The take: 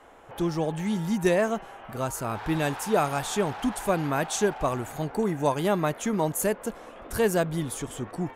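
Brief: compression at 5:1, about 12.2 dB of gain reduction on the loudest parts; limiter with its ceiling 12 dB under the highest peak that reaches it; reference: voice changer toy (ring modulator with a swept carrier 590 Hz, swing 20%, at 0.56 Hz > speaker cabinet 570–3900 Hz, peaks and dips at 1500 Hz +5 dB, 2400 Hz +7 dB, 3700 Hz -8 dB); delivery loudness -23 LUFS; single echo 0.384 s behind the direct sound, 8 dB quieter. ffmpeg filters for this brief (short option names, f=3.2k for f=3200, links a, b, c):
-af "acompressor=threshold=-32dB:ratio=5,alimiter=level_in=8.5dB:limit=-24dB:level=0:latency=1,volume=-8.5dB,aecho=1:1:384:0.398,aeval=exprs='val(0)*sin(2*PI*590*n/s+590*0.2/0.56*sin(2*PI*0.56*n/s))':c=same,highpass=570,equalizer=f=1.5k:t=q:w=4:g=5,equalizer=f=2.4k:t=q:w=4:g=7,equalizer=f=3.7k:t=q:w=4:g=-8,lowpass=f=3.9k:w=0.5412,lowpass=f=3.9k:w=1.3066,volume=22dB"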